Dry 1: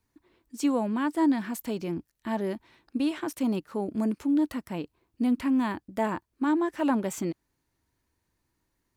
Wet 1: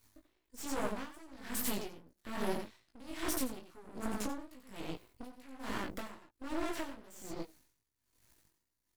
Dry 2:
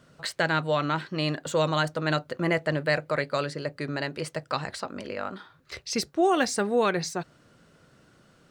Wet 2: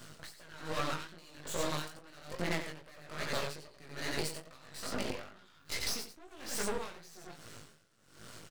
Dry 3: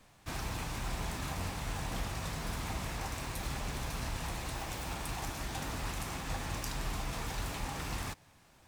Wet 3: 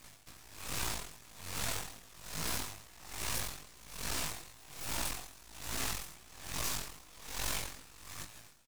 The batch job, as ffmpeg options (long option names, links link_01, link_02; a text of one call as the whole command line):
ffmpeg -i in.wav -filter_complex "[0:a]highshelf=frequency=3400:gain=11,bandreject=frequency=820:width=12,asplit=2[link_01][link_02];[link_02]alimiter=limit=-20dB:level=0:latency=1,volume=1.5dB[link_03];[link_01][link_03]amix=inputs=2:normalize=0,flanger=delay=0.9:depth=8.1:regen=-81:speed=0.32:shape=sinusoidal,asoftclip=type=hard:threshold=-26.5dB,asplit=2[link_04][link_05];[link_05]adelay=19,volume=-4.5dB[link_06];[link_04][link_06]amix=inputs=2:normalize=0,asplit=2[link_07][link_08];[link_08]aecho=0:1:89:0.562[link_09];[link_07][link_09]amix=inputs=2:normalize=0,acrossover=split=220[link_10][link_11];[link_10]acompressor=threshold=-37dB:ratio=6[link_12];[link_12][link_11]amix=inputs=2:normalize=0,flanger=delay=16:depth=5.8:speed=2.4,acompressor=threshold=-38dB:ratio=3,aeval=exprs='max(val(0),0)':channel_layout=same,aeval=exprs='val(0)*pow(10,-22*(0.5-0.5*cos(2*PI*1.2*n/s))/20)':channel_layout=same,volume=9dB" out.wav